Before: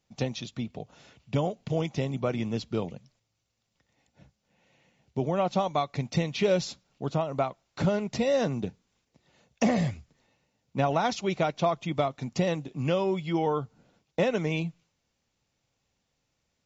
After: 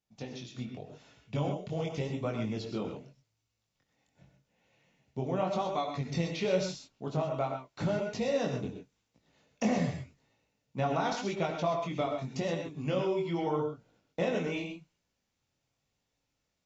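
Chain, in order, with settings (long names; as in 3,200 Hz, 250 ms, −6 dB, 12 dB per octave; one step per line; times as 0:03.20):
automatic gain control gain up to 6 dB
chorus effect 0.87 Hz, delay 17.5 ms, depth 6.4 ms
reverb whose tail is shaped and stops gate 150 ms rising, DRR 4.5 dB
level −8.5 dB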